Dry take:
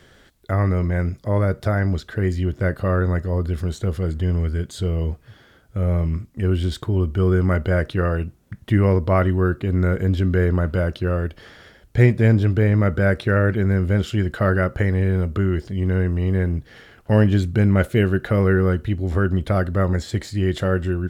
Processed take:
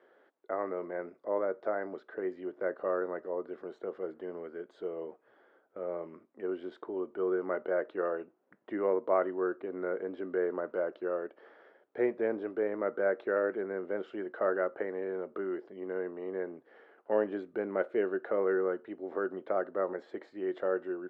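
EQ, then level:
high-pass filter 360 Hz 24 dB per octave
low-pass filter 1,100 Hz 12 dB per octave
−6.0 dB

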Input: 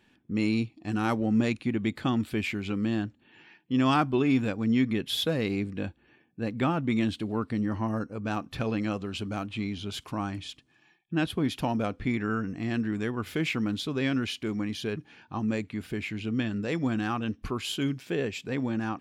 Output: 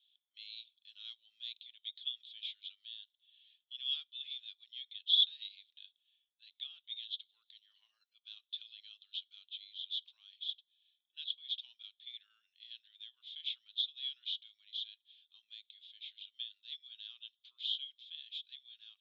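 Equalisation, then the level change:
flat-topped band-pass 3,500 Hz, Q 6.4
spectral tilt +2.5 dB per octave
0.0 dB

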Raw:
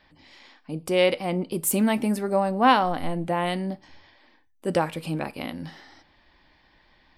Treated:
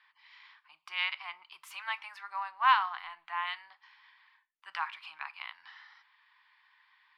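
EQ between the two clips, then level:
elliptic high-pass filter 1,000 Hz, stop band 50 dB
high-frequency loss of the air 270 metres
0.0 dB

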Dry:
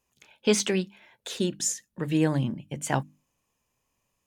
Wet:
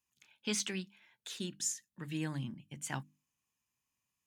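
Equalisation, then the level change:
high-pass filter 150 Hz 6 dB per octave
parametric band 530 Hz −13.5 dB 1.4 octaves
−7.5 dB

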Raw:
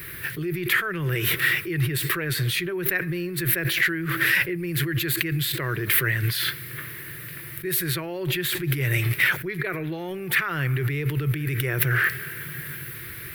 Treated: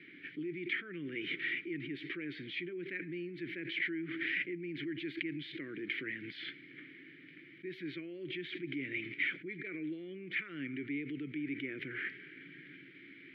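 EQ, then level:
formant filter i
high-frequency loss of the air 270 metres
low shelf with overshoot 150 Hz −10 dB, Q 1.5
+1.5 dB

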